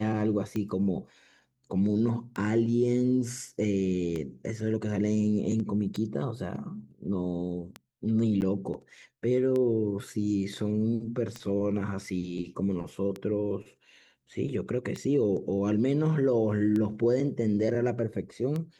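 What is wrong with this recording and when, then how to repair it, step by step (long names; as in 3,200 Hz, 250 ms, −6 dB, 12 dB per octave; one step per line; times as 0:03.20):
scratch tick 33 1/3 rpm −21 dBFS
0:08.41–0:08.42: drop-out 9.7 ms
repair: click removal
repair the gap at 0:08.41, 9.7 ms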